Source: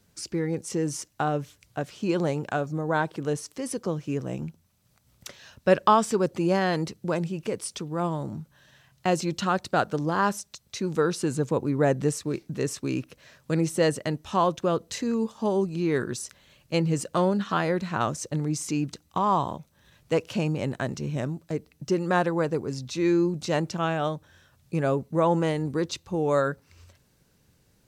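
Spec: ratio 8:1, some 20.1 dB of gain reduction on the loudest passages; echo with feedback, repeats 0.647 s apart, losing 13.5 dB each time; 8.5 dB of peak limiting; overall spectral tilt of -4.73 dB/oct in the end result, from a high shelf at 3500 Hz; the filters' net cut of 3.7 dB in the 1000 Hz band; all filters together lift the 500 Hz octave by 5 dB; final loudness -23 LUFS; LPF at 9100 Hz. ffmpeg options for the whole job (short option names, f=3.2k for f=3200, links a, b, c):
-af "lowpass=9.1k,equalizer=f=500:t=o:g=8,equalizer=f=1k:t=o:g=-9,highshelf=f=3.5k:g=9,acompressor=threshold=-32dB:ratio=8,alimiter=level_in=3dB:limit=-24dB:level=0:latency=1,volume=-3dB,aecho=1:1:647|1294:0.211|0.0444,volume=14.5dB"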